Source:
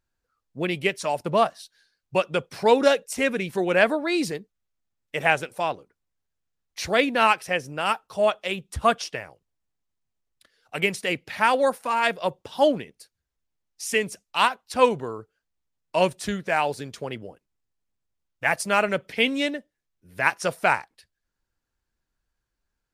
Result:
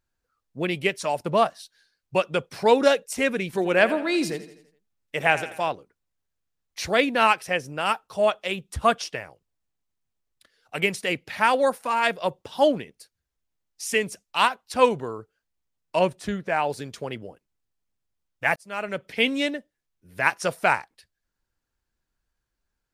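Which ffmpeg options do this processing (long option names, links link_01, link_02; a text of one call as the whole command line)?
ffmpeg -i in.wav -filter_complex "[0:a]asettb=1/sr,asplit=3[link_01][link_02][link_03];[link_01]atrim=end=3.454[link_04];[link_02]atrim=start=3.45:end=5.69,asetpts=PTS-STARTPTS,afade=type=in:duration=0.004:curve=qsin,afade=type=out:start_time=2.236:duration=0.004:curve=qsin,aecho=1:1:83|166|249|332|415:0.188|0.0942|0.0471|0.0235|0.0118,atrim=end_sample=98784[link_05];[link_03]atrim=start=5.686[link_06];[link_04][link_05]acrossfade=duration=0.004:curve1=hsin:curve2=qsin[link_07];[link_07][link_06]acrossfade=duration=0.004:curve1=qsin:curve2=hsin,asettb=1/sr,asplit=3[link_08][link_09][link_10];[link_08]atrim=end=15.994[link_11];[link_09]atrim=start=15.99:end=16.7,asetpts=PTS-STARTPTS,afade=type=in:duration=0.004:curve=qsin,afade=type=out:start_time=0.706:duration=0.004:curve=qsin,highshelf=frequency=2700:gain=-8.5[link_12];[link_10]atrim=start=16.696[link_13];[link_11][link_12]acrossfade=duration=0.004:curve1=hsin:curve2=qsin[link_14];[link_14][link_13]acrossfade=duration=0.004:curve1=qsin:curve2=hsin,asplit=2[link_15][link_16];[link_15]atrim=end=18.56,asetpts=PTS-STARTPTS,afade=type=out:start_time=18.556:duration=0.004:curve=hsin[link_17];[link_16]atrim=start=18.56,asetpts=PTS-STARTPTS,afade=type=in:duration=0.68[link_18];[link_17][link_18]concat=n=2:v=0:a=1" out.wav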